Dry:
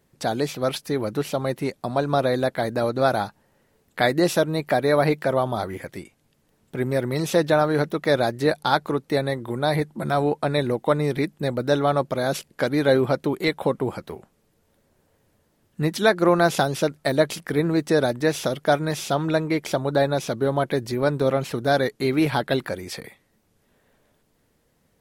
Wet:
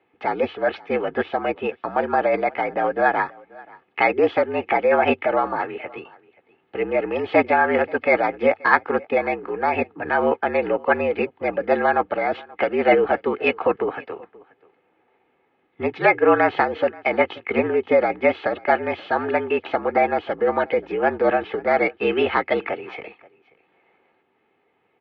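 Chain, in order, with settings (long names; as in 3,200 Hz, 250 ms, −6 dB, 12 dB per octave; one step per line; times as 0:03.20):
low-shelf EQ 340 Hz −7.5 dB
comb filter 2.3 ms, depth 52%
formants moved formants +4 semitones
single-tap delay 531 ms −23.5 dB
single-sideband voice off tune −56 Hz 200–3,000 Hz
level +4 dB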